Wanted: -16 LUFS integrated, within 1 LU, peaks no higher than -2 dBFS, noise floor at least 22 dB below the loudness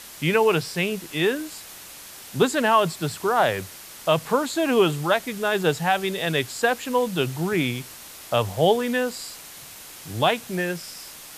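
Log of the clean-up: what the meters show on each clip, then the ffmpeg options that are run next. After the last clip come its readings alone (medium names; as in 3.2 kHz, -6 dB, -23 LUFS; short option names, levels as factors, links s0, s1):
noise floor -42 dBFS; noise floor target -45 dBFS; loudness -23.0 LUFS; peak level -7.0 dBFS; loudness target -16.0 LUFS
-> -af "afftdn=nr=6:nf=-42"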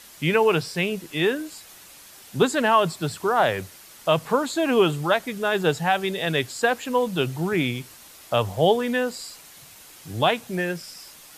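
noise floor -47 dBFS; loudness -23.0 LUFS; peak level -7.5 dBFS; loudness target -16.0 LUFS
-> -af "volume=2.24,alimiter=limit=0.794:level=0:latency=1"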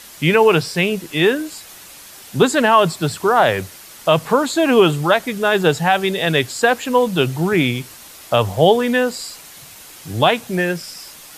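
loudness -16.5 LUFS; peak level -2.0 dBFS; noise floor -40 dBFS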